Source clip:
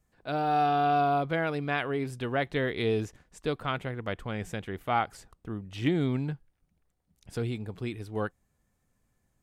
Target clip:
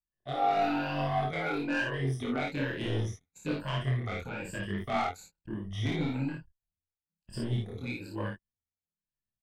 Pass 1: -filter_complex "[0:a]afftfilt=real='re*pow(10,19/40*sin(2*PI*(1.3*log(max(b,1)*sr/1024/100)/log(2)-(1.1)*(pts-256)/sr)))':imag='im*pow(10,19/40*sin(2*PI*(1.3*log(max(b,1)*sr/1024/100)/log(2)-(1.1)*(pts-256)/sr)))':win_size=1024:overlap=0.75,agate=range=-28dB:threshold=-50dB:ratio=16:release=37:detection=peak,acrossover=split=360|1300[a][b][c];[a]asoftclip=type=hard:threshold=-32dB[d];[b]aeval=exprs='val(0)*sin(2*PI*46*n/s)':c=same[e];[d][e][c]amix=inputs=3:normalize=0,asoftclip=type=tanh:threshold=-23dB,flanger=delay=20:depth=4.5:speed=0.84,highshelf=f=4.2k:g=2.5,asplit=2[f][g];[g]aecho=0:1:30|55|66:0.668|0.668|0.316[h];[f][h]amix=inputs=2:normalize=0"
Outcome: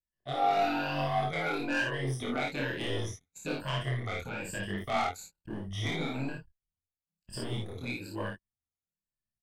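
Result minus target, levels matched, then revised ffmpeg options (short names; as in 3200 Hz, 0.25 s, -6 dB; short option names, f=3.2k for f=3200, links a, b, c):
hard clip: distortion +19 dB; 8000 Hz band +6.0 dB
-filter_complex "[0:a]afftfilt=real='re*pow(10,19/40*sin(2*PI*(1.3*log(max(b,1)*sr/1024/100)/log(2)-(1.1)*(pts-256)/sr)))':imag='im*pow(10,19/40*sin(2*PI*(1.3*log(max(b,1)*sr/1024/100)/log(2)-(1.1)*(pts-256)/sr)))':win_size=1024:overlap=0.75,agate=range=-28dB:threshold=-50dB:ratio=16:release=37:detection=peak,acrossover=split=360|1300[a][b][c];[a]asoftclip=type=hard:threshold=-20.5dB[d];[b]aeval=exprs='val(0)*sin(2*PI*46*n/s)':c=same[e];[d][e][c]amix=inputs=3:normalize=0,asoftclip=type=tanh:threshold=-23dB,flanger=delay=20:depth=4.5:speed=0.84,highshelf=f=4.2k:g=-4.5,asplit=2[f][g];[g]aecho=0:1:30|55|66:0.668|0.668|0.316[h];[f][h]amix=inputs=2:normalize=0"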